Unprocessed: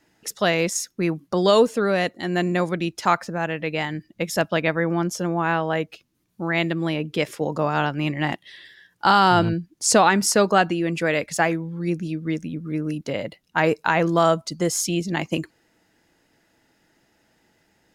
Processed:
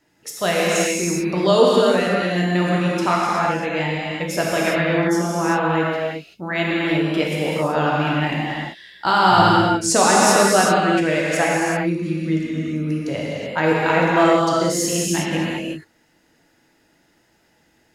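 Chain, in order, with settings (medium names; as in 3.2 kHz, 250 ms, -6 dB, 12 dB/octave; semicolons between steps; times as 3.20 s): gated-style reverb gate 410 ms flat, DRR -5 dB; trim -2.5 dB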